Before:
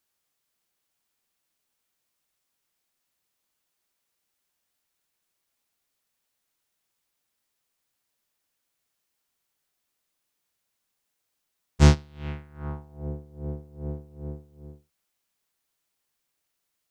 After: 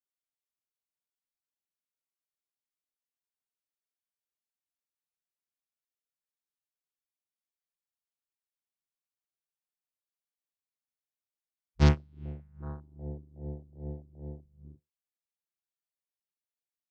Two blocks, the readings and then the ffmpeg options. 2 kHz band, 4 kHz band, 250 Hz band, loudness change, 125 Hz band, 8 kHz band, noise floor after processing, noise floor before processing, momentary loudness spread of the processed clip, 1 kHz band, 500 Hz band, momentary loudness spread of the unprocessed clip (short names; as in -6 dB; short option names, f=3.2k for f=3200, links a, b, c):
-6.0 dB, -7.0 dB, -5.5 dB, -5.5 dB, -5.5 dB, -13.5 dB, under -85 dBFS, -80 dBFS, 20 LU, -5.5 dB, -5.5 dB, 20 LU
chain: -af "afwtdn=0.0126,volume=-5.5dB"